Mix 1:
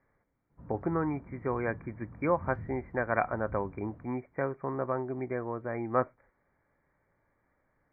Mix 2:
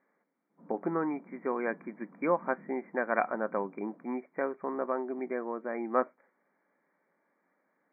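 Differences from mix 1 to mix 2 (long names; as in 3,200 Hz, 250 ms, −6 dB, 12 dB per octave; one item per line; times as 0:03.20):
background: add low-pass filter 1,200 Hz
master: add linear-phase brick-wall high-pass 170 Hz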